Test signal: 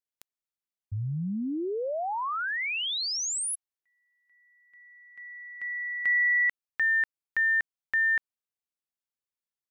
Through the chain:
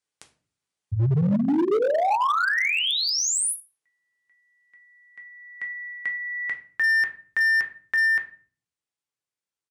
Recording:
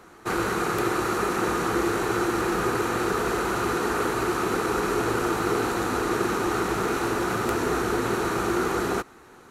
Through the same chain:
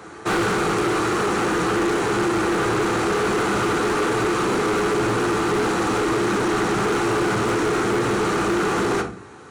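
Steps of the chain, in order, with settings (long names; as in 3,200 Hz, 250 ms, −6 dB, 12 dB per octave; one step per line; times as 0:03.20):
high-pass filter 63 Hz 24 dB per octave
dynamic equaliser 210 Hz, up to +3 dB, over −45 dBFS, Q 2.4
downsampling to 22,050 Hz
speech leveller 0.5 s
rectangular room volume 33 cubic metres, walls mixed, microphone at 0.4 metres
hard clipping −22.5 dBFS
level +4.5 dB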